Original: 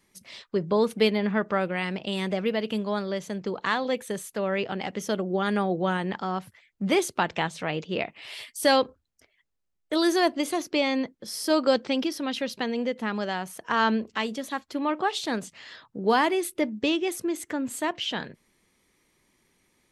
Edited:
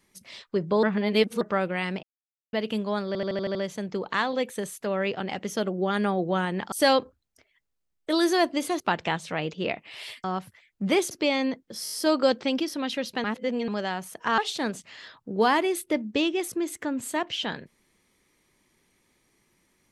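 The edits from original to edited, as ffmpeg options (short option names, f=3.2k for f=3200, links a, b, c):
-filter_complex "[0:a]asplit=22[a][b][c][d][e][f][g][h][i][j][k][l][m][n][o][p][q][r][s][t][u][v];[a]atrim=end=0.832[w];[b]atrim=start=0.828:end=1.412,asetpts=PTS-STARTPTS,areverse[x];[c]atrim=start=1.408:end=2.03,asetpts=PTS-STARTPTS,afade=t=out:st=0.618:d=0.004:c=hsin[y];[d]atrim=start=2.03:end=2.53,asetpts=PTS-STARTPTS,volume=0[z];[e]atrim=start=2.53:end=3.152,asetpts=PTS-STARTPTS,afade=t=in:d=0.004:c=hsin[aa];[f]atrim=start=3.068:end=3.152[ab];[g]atrim=start=3.068:end=3.152[ac];[h]atrim=start=3.068:end=3.152[ad];[i]atrim=start=3.068:end=3.152[ae];[j]atrim=start=3.068:end=3.152[af];[k]atrim=start=3.068:end=6.242[ag];[l]atrim=start=8.548:end=10.632[ah];[m]atrim=start=7.108:end=8.552[ai];[n]atrim=start=6.238:end=7.112[aj];[o]atrim=start=10.628:end=11.382[ak];[p]atrim=start=11.358:end=11.382[al];[q]atrim=start=11.358:end=11.382[am];[r]atrim=start=11.358:end=11.382[an];[s]atrim=start=11.358:end=12.682[ao];[t]atrim=start=12.678:end=13.122,asetpts=PTS-STARTPTS,areverse[ap];[u]atrim=start=13.118:end=13.822[aq];[v]atrim=start=15.058[ar];[w][x]acrossfade=d=0.004:c1=hsin:c2=hsin[as];[y][z][aa]concat=n=3:v=0:a=1[at];[as][at]acrossfade=d=0.004:c1=hsin:c2=hsin[au];[au][ab]acrossfade=d=0.004:c1=hsin:c2=hsin[av];[av][ac]acrossfade=d=0.004:c1=hsin:c2=hsin[aw];[aw][ad]acrossfade=d=0.004:c1=hsin:c2=hsin[ax];[ax][ae]acrossfade=d=0.004:c1=hsin:c2=hsin[ay];[ay][af]acrossfade=d=0.004:c1=hsin:c2=hsin[az];[az][ag]acrossfade=d=0.004:c1=hsin:c2=hsin[ba];[ba][ah]acrossfade=d=0.004:c1=hsin:c2=hsin[bb];[bb][ai]acrossfade=d=0.004:c1=hsin:c2=hsin[bc];[bc][aj]acrossfade=d=0.004:c1=hsin:c2=hsin[bd];[bd][ak]acrossfade=d=0.004:c1=hsin:c2=hsin[be];[be][al]acrossfade=d=0.004:c1=hsin:c2=hsin[bf];[bf][am]acrossfade=d=0.004:c1=hsin:c2=hsin[bg];[bg][an]acrossfade=d=0.004:c1=hsin:c2=hsin[bh];[bh][ao]acrossfade=d=0.004:c1=hsin:c2=hsin[bi];[bi][ap]acrossfade=d=0.004:c1=hsin:c2=hsin[bj];[bj][aq]acrossfade=d=0.004:c1=hsin:c2=hsin[bk];[bk][ar]acrossfade=d=0.004:c1=hsin:c2=hsin"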